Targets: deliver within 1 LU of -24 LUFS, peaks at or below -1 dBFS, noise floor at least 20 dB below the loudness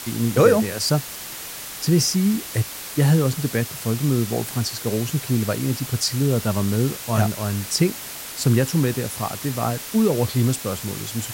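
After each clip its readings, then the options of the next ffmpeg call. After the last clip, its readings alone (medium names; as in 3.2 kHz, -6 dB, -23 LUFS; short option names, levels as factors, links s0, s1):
noise floor -35 dBFS; noise floor target -42 dBFS; loudness -22.0 LUFS; peak level -2.5 dBFS; loudness target -24.0 LUFS
-> -af "afftdn=nr=7:nf=-35"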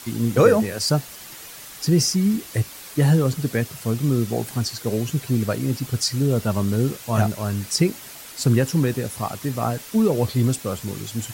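noise floor -40 dBFS; noise floor target -42 dBFS
-> -af "afftdn=nr=6:nf=-40"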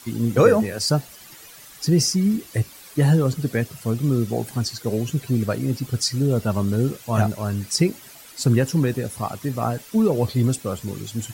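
noise floor -44 dBFS; loudness -22.0 LUFS; peak level -3.0 dBFS; loudness target -24.0 LUFS
-> -af "volume=0.794"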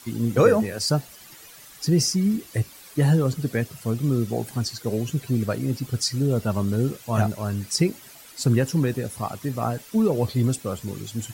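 loudness -24.0 LUFS; peak level -5.0 dBFS; noise floor -46 dBFS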